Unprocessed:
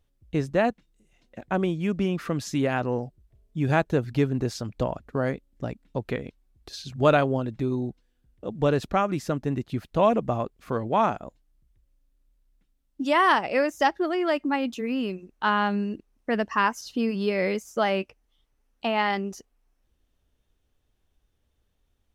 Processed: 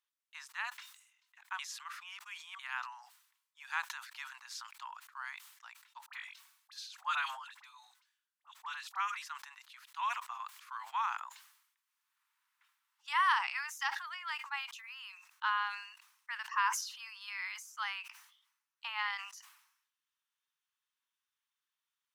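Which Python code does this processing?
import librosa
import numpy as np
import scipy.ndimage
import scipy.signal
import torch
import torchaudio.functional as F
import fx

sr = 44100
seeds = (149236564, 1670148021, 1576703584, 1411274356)

y = fx.dispersion(x, sr, late='highs', ms=47.0, hz=1300.0, at=(6.06, 9.26))
y = fx.band_squash(y, sr, depth_pct=70, at=(11.14, 13.08))
y = fx.edit(y, sr, fx.reverse_span(start_s=1.59, length_s=1.0), tone=tone)
y = scipy.signal.sosfilt(scipy.signal.butter(12, 930.0, 'highpass', fs=sr, output='sos'), y)
y = fx.sustainer(y, sr, db_per_s=73.0)
y = y * 10.0 ** (-7.5 / 20.0)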